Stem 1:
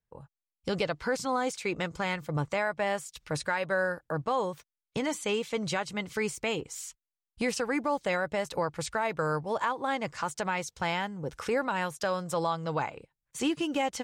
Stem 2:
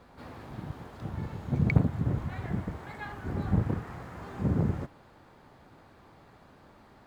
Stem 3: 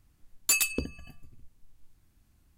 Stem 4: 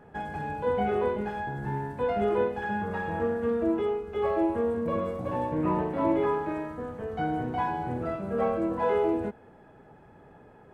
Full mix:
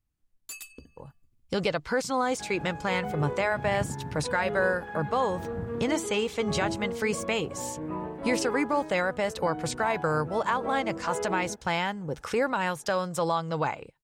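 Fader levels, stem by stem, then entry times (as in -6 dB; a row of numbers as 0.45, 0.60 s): +2.5, -10.5, -16.5, -7.5 dB; 0.85, 2.05, 0.00, 2.25 s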